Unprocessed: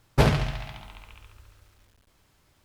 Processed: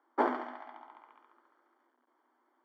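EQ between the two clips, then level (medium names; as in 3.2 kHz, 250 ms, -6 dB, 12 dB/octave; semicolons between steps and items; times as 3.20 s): Savitzky-Golay filter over 41 samples; rippled Chebyshev high-pass 240 Hz, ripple 9 dB; 0.0 dB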